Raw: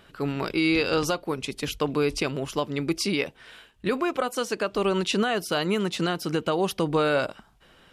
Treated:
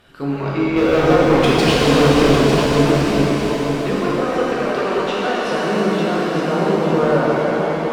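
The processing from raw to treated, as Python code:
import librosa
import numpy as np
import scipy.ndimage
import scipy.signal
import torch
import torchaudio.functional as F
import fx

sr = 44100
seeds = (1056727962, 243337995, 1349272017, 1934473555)

y = fx.env_lowpass_down(x, sr, base_hz=1300.0, full_db=-21.5)
y = fx.leveller(y, sr, passes=3, at=(0.76, 2.35))
y = fx.tilt_eq(y, sr, slope=4.0, at=(4.67, 5.5))
y = fx.echo_feedback(y, sr, ms=900, feedback_pct=32, wet_db=-7)
y = fx.rev_shimmer(y, sr, seeds[0], rt60_s=3.7, semitones=7, shimmer_db=-8, drr_db=-7.0)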